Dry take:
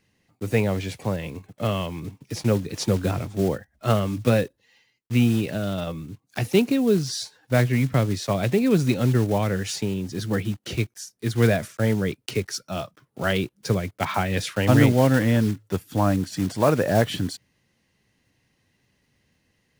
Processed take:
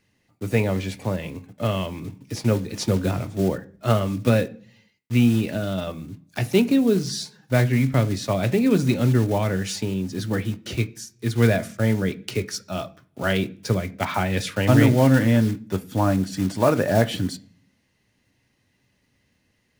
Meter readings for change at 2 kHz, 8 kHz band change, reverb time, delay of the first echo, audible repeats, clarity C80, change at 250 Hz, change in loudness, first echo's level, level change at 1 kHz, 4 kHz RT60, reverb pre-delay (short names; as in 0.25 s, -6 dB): +0.5 dB, 0.0 dB, 0.45 s, none, none, 24.5 dB, +1.5 dB, +1.0 dB, none, 0.0 dB, 0.55 s, 3 ms